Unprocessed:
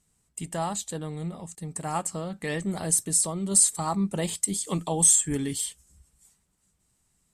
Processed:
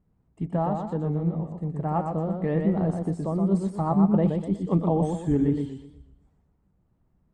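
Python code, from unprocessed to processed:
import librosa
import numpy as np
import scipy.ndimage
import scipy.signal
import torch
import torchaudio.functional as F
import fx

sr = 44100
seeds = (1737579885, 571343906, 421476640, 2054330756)

y = scipy.signal.sosfilt(scipy.signal.bessel(2, 640.0, 'lowpass', norm='mag', fs=sr, output='sos'), x)
y = fx.echo_warbled(y, sr, ms=121, feedback_pct=36, rate_hz=2.8, cents=118, wet_db=-5.0)
y = y * 10.0 ** (6.5 / 20.0)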